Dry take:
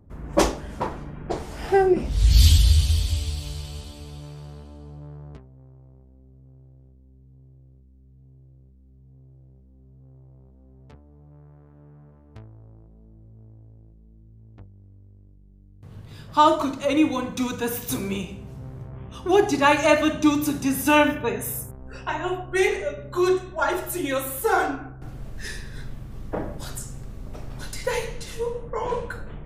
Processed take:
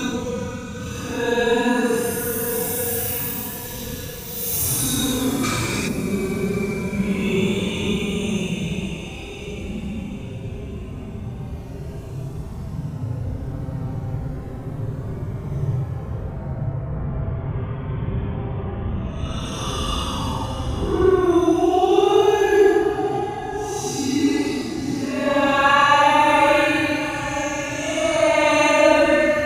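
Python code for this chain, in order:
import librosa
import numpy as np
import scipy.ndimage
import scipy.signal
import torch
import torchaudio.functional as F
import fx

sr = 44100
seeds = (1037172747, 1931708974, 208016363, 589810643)

y = fx.recorder_agc(x, sr, target_db=-11.5, rise_db_per_s=8.5, max_gain_db=30)
y = fx.paulstretch(y, sr, seeds[0], factor=12.0, window_s=0.05, from_s=17.51)
y = fx.spec_box(y, sr, start_s=5.44, length_s=0.44, low_hz=1200.0, high_hz=8800.0, gain_db=10)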